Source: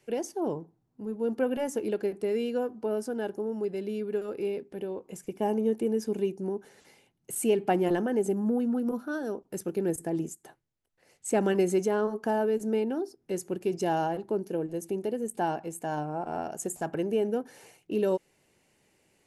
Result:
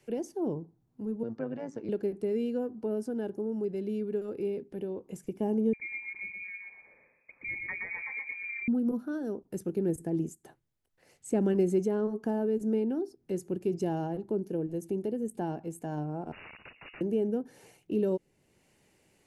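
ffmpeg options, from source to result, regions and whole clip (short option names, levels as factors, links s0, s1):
-filter_complex "[0:a]asettb=1/sr,asplit=3[s0][s1][s2];[s0]atrim=end=1.234[s3];[s1]atrim=start=1.23:end=1.89,asetpts=PTS-STARTPTS,afade=t=in:d=0.004:c=qsin,afade=t=out:st=0.656:d=0.004:c=qsin,highpass=260,equalizer=f=420:t=q:w=4:g=-7,equalizer=f=1200:t=q:w=4:g=5,equalizer=f=1800:t=q:w=4:g=3,equalizer=f=3000:t=q:w=4:g=-7,lowpass=f=5800:w=0.5412,lowpass=f=5800:w=1.3066,tremolo=f=110:d=0.667[s4];[s2]atrim=start=1.886[s5];[s3][s4]acrossfade=d=0.004:c1=hsin:c2=qsin[s6];[s6][s5]acrossfade=d=0.004:c1=qsin:c2=hsin,asettb=1/sr,asplit=3[s7][s8][s9];[s7]atrim=end=5.734[s10];[s8]atrim=start=5.73:end=8.68,asetpts=PTS-STARTPTS,afade=t=in:d=0.004:c=qsin,afade=t=out:st=2.946:d=0.004:c=qsin,lowpass=f=2200:t=q:w=0.5098,lowpass=f=2200:t=q:w=0.6013,lowpass=f=2200:t=q:w=0.9,lowpass=f=2200:t=q:w=2.563,afreqshift=-2600,aecho=1:1:121|242|363|484:0.562|0.191|0.065|0.0221,atrim=end_sample=130095[s11];[s9]atrim=start=8.676[s12];[s10][s11]acrossfade=d=0.004:c1=hsin:c2=qsin[s13];[s13][s12]acrossfade=d=0.004:c1=qsin:c2=hsin,asettb=1/sr,asplit=3[s14][s15][s16];[s14]atrim=end=16.324[s17];[s15]atrim=start=16.32:end=17.01,asetpts=PTS-STARTPTS,afade=t=in:d=0.004:c=qsin,afade=t=out:st=0.686:d=0.004:c=qsin,aeval=exprs='(mod(50.1*val(0)+1,2)-1)/50.1':c=same,lowpass=f=2500:t=q:w=0.5098,lowpass=f=2500:t=q:w=0.6013,lowpass=f=2500:t=q:w=0.9,lowpass=f=2500:t=q:w=2.563,afreqshift=-2900[s18];[s16]atrim=start=17.006[s19];[s17][s18]acrossfade=d=0.004:c1=hsin:c2=qsin[s20];[s20][s19]acrossfade=d=0.004:c1=qsin:c2=hsin,lowshelf=f=200:g=4,acrossover=split=450[s21][s22];[s22]acompressor=threshold=0.001:ratio=1.5[s23];[s21][s23]amix=inputs=2:normalize=0"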